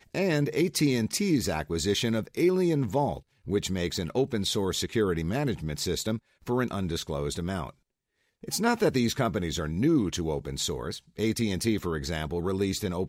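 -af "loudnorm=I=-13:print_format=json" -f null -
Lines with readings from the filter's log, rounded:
"input_i" : "-28.6",
"input_tp" : "-10.1",
"input_lra" : "2.7",
"input_thresh" : "-38.7",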